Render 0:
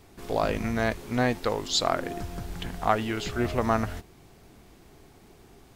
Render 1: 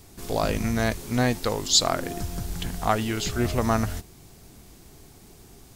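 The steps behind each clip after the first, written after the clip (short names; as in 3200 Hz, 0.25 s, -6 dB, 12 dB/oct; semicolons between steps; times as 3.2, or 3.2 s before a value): tone controls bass +5 dB, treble +11 dB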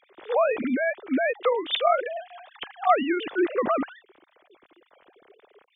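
sine-wave speech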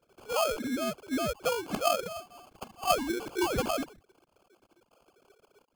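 painted sound rise, 3.41–3.62, 850–2300 Hz -25 dBFS; sample-rate reducer 1900 Hz, jitter 0%; gain -6.5 dB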